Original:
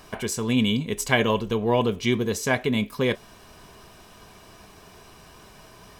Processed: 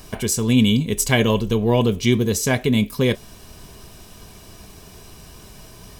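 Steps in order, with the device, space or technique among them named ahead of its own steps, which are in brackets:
smiley-face EQ (low-shelf EQ 120 Hz +6.5 dB; parametric band 1,200 Hz −6.5 dB 2.3 octaves; high-shelf EQ 6,100 Hz +5.5 dB)
level +5.5 dB

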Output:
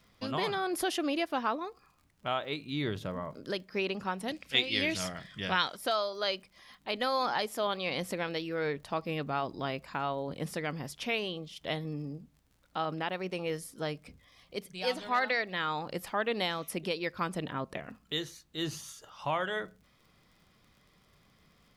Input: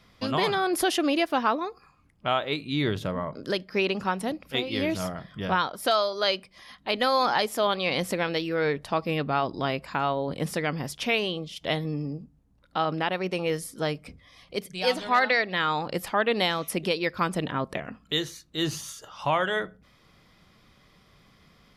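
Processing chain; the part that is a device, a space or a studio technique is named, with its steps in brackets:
vinyl LP (surface crackle 60 per second −46 dBFS; pink noise bed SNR 42 dB)
0:04.28–0:05.77: flat-topped bell 4,000 Hz +10 dB 2.8 octaves
level −7 dB

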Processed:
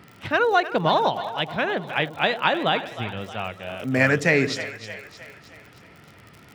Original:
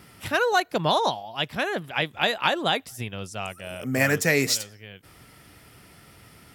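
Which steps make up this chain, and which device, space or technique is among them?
high-pass filter 83 Hz
lo-fi chain (low-pass filter 3,100 Hz 12 dB per octave; tape wow and flutter; surface crackle 68 per second −38 dBFS)
0:03.77–0:04.30: high-shelf EQ 4,200 Hz +6.5 dB
echo with a time of its own for lows and highs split 500 Hz, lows 83 ms, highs 311 ms, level −12.5 dB
level +2.5 dB

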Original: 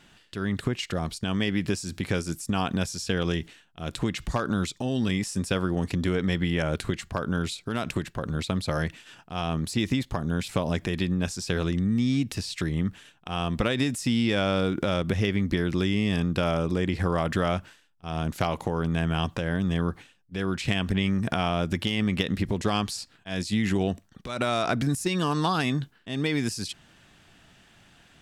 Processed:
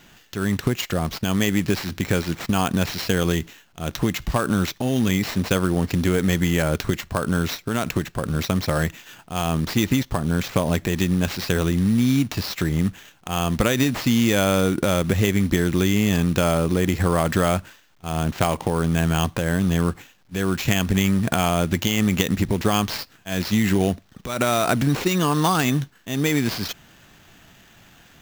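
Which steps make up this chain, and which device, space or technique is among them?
early companding sampler (sample-rate reduction 9,600 Hz, jitter 0%; log-companded quantiser 6 bits)
level +5.5 dB

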